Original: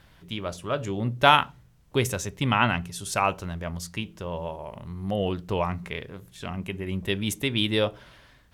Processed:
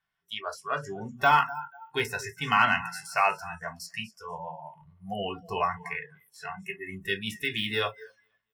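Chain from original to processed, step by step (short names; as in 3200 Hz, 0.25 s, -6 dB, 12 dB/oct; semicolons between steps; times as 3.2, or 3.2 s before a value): de-esser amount 70%; passive tone stack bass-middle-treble 10-0-10; notches 60/120/180/240 Hz; on a send: feedback echo 0.243 s, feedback 36%, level -15.5 dB; on the sum: reverb RT60 0.20 s, pre-delay 3 ms, DRR 0 dB; in parallel at -8 dB: overloaded stage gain 13.5 dB; on the sum: spectral noise reduction 26 dB; gain -4.5 dB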